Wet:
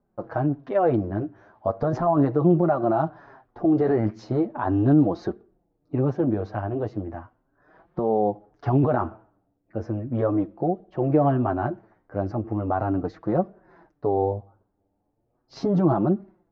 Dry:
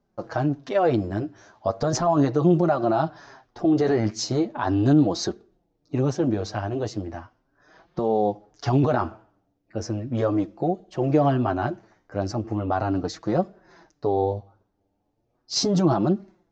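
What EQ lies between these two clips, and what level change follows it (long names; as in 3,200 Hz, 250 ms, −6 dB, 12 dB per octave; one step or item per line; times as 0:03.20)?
low-pass filter 1,500 Hz 12 dB per octave
0.0 dB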